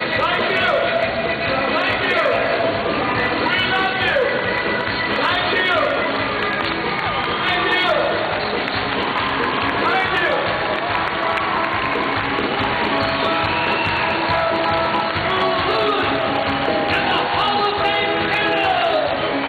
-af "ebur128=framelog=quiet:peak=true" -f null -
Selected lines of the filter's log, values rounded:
Integrated loudness:
  I:         -18.2 LUFS
  Threshold: -28.2 LUFS
Loudness range:
  LRA:         1.2 LU
  Threshold: -38.3 LUFS
  LRA low:   -18.9 LUFS
  LRA high:  -17.7 LUFS
True peak:
  Peak:       -8.9 dBFS